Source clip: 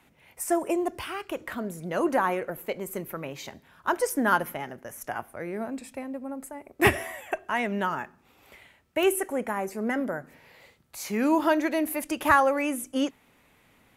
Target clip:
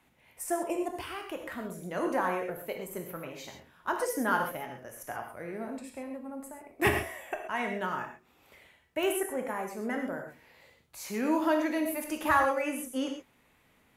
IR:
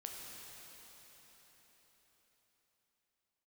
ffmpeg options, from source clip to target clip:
-filter_complex "[1:a]atrim=start_sample=2205,afade=t=out:st=0.23:d=0.01,atrim=end_sample=10584,asetrate=57330,aresample=44100[s0];[0:a][s0]afir=irnorm=-1:irlink=0,volume=1.26"

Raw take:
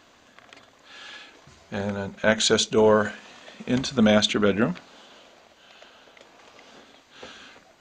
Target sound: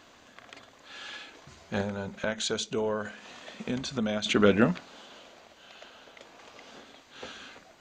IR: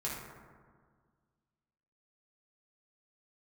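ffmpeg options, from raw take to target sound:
-filter_complex "[0:a]asettb=1/sr,asplit=3[s0][s1][s2];[s0]atrim=end=1.814[s3];[s1]atrim=start=1.81:end=4.26,asetpts=PTS-STARTPTS,afade=t=in:d=0.004:c=qsin,afade=t=out:st=2.446:d=0.004:c=qsin,acompressor=threshold=0.0282:ratio=3[s4];[s2]atrim=start=4.256[s5];[s3][s4]acrossfade=d=0.004:c1=hsin:c2=qsin[s6];[s6][s5]acrossfade=d=0.004:c1=qsin:c2=hsin"

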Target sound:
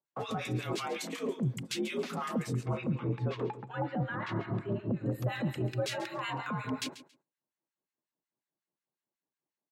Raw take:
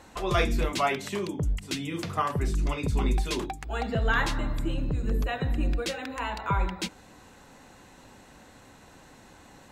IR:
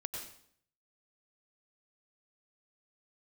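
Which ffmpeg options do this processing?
-filter_complex "[0:a]highpass=61,agate=range=0.00562:threshold=0.0112:ratio=16:detection=peak,asettb=1/sr,asplit=3[s0][s1][s2];[s0]atrim=end=2.634[s3];[s1]atrim=start=2.63:end=5.06,asetpts=PTS-STARTPTS,afade=t=in:d=0.004:c=qsin,afade=t=out:st=2.426:d=0.004:c=qsin,lowpass=1700[s4];[s2]atrim=start=5.056[s5];[s3][s4]acrossfade=d=0.004:c1=hsin:c2=qsin[s6];[s6][s5]acrossfade=d=0.004:c1=qsin:c2=hsin,alimiter=level_in=1.58:limit=0.0631:level=0:latency=1:release=13,volume=0.631,afreqshift=74,acrossover=split=1200[s7][s8];[s7]aeval=exprs='val(0)*(1-1/2+1/2*cos(2*PI*5.5*n/s))':c=same[s9];[s8]aeval=exprs='val(0)*(1-1/2-1/2*cos(2*PI*5.5*n/s))':c=same[s10];[s9][s10]amix=inputs=2:normalize=0,aecho=1:1:138|276:0.178|0.0338,volume=1.78"

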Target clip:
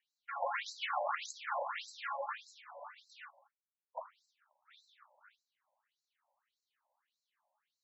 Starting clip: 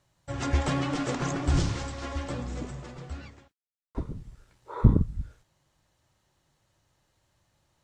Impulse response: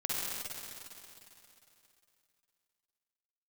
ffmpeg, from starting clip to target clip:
-filter_complex "[0:a]agate=range=0.398:threshold=0.00631:ratio=16:detection=peak,highpass=94,bass=f=250:g=14,treble=f=4000:g=-11,asettb=1/sr,asplit=3[s0][s1][s2];[s0]atrim=end=2.504[s3];[s1]atrim=start=2.5:end=3.07,asetpts=PTS-STARTPTS,afade=t=in:d=0.004:c=qsin,afade=t=out:st=0.566:d=0.004:c=qsin,acrossover=split=230[s4][s5];[s5]acompressor=threshold=0.00794:ratio=2[s6];[s4][s6]amix=inputs=2:normalize=0[s7];[s2]atrim=start=3.066[s8];[s3][s7]acrossfade=d=0.004:c1=hsin:c2=qsin[s9];[s9][s8]acrossfade=d=0.004:c1=qsin:c2=hsin,afftfilt=real='re*between(b*sr/1024,720*pow(5600/720,0.5+0.5*sin(2*PI*1.7*pts/sr))/1.41,720*pow(5600/720,0.5+0.5*sin(2*PI*1.7*pts/sr))*1.41)':imag='im*between(b*sr/1024,720*pow(5600/720,0.5+0.5*sin(2*PI*1.7*pts/sr))/1.41,720*pow(5600/720,0.5+0.5*sin(2*PI*1.7*pts/sr))*1.41)':win_size=1024:overlap=0.75,volume=1.78"

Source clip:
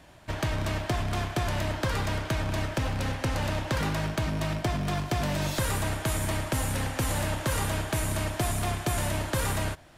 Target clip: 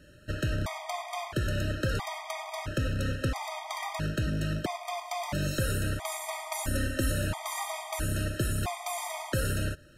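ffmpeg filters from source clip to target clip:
-filter_complex "[0:a]asettb=1/sr,asplit=3[s0][s1][s2];[s0]atrim=end=6.514[s3];[s1]atrim=start=6.51:end=7.11,asetpts=PTS-STARTPTS,afade=t=in:d=0.004:c=qsin,afade=t=out:st=0.596:d=0.004:c=qsin,aecho=1:1:3.3:0.65,atrim=end_sample=26460[s4];[s2]atrim=start=7.106[s5];[s3][s4]acrossfade=d=0.004:c1=hsin:c2=qsin[s6];[s6][s5]acrossfade=d=0.004:c1=qsin:c2=hsin,afftfilt=real='re*gt(sin(2*PI*0.75*pts/sr)*(1-2*mod(floor(b*sr/1024/630),2)),0)':imag='im*gt(sin(2*PI*0.75*pts/sr)*(1-2*mod(floor(b*sr/1024/630),2)),0)':win_size=1024:overlap=0.75"

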